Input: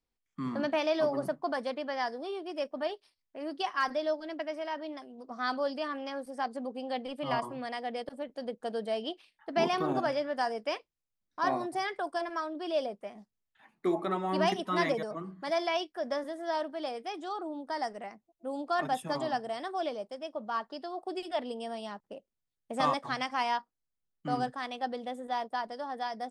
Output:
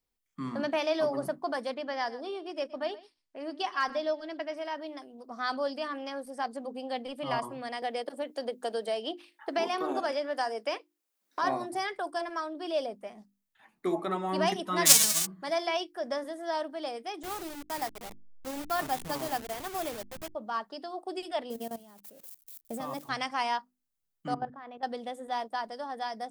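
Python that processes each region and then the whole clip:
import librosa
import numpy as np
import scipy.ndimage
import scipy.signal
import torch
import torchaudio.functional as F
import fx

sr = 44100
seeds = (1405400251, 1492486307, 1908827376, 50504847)

y = fx.chain(x, sr, fx.lowpass(hz=7400.0, slope=12),
    fx.echo_single(ms=121, db=-18.5), at=(1.74, 4.57))
y = fx.chain(y, sr, fx.highpass(hz=260.0, slope=24),
    fx.band_squash(depth_pct=70), at=(7.82, 11.42))
y = fx.envelope_flatten(y, sr, power=0.1, at=(14.85, 15.25), fade=0.02)
y = fx.peak_eq(y, sr, hz=6600.0, db=14.0, octaves=2.0, at=(14.85, 15.25), fade=0.02)
y = fx.chain(y, sr, fx.delta_hold(step_db=-36.0),
    fx.peak_eq(hz=600.0, db=-3.0, octaves=0.32), at=(17.23, 20.35))
y = fx.chain(y, sr, fx.crossing_spikes(level_db=-33.0),
    fx.tilt_shelf(db=6.5, hz=700.0),
    fx.level_steps(step_db=18), at=(21.5, 23.09))
y = fx.chain(y, sr, fx.lowpass(hz=1500.0, slope=12),
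    fx.level_steps(step_db=15), at=(24.34, 24.83))
y = fx.high_shelf(y, sr, hz=8000.0, db=8.5)
y = fx.hum_notches(y, sr, base_hz=50, count=7)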